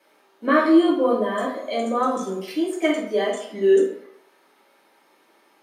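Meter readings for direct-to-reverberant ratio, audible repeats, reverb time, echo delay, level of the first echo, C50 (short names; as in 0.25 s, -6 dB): -5.0 dB, none, 0.70 s, none, none, 4.5 dB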